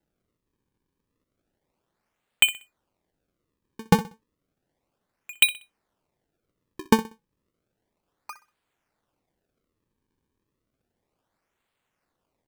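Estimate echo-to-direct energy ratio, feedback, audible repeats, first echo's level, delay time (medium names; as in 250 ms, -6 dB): -15.0 dB, 29%, 2, -15.5 dB, 63 ms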